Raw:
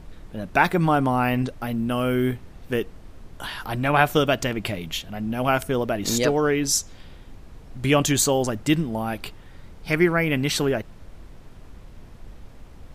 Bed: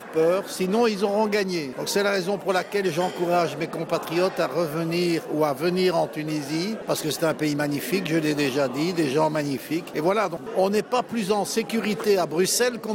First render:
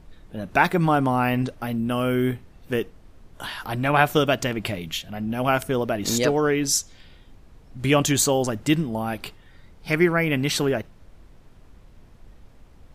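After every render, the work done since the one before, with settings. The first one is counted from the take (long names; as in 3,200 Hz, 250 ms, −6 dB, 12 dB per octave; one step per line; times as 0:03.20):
noise reduction from a noise print 6 dB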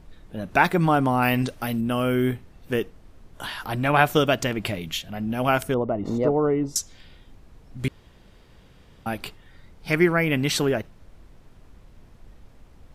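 0:01.22–0:01.81: high-shelf EQ 2,500 Hz +8 dB
0:05.74–0:06.76: Savitzky-Golay smoothing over 65 samples
0:07.88–0:09.06: fill with room tone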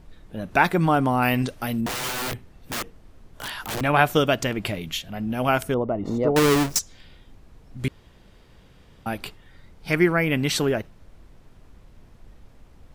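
0:01.86–0:03.81: wrap-around overflow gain 24 dB
0:06.36–0:06.79: each half-wave held at its own peak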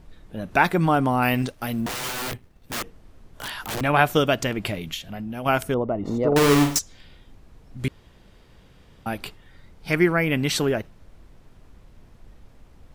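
0:01.35–0:02.74: mu-law and A-law mismatch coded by A
0:04.94–0:05.46: downward compressor, threshold −28 dBFS
0:06.27–0:06.78: flutter between parallel walls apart 8.3 metres, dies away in 0.43 s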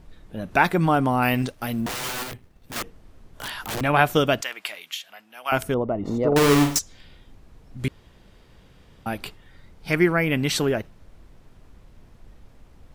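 0:02.23–0:02.76: downward compressor 2 to 1, threshold −36 dBFS
0:04.41–0:05.52: high-pass filter 1,100 Hz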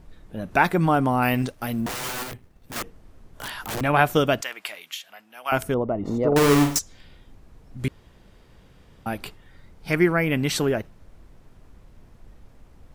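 parametric band 3,500 Hz −2.5 dB 1.4 octaves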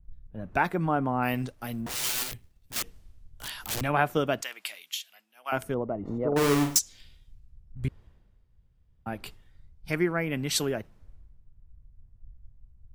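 downward compressor 2 to 1, threshold −32 dBFS, peak gain reduction 10.5 dB
multiband upward and downward expander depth 100%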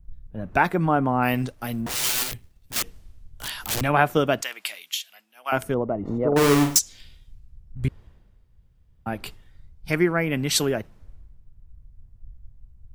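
level +5.5 dB
brickwall limiter −1 dBFS, peak gain reduction 1.5 dB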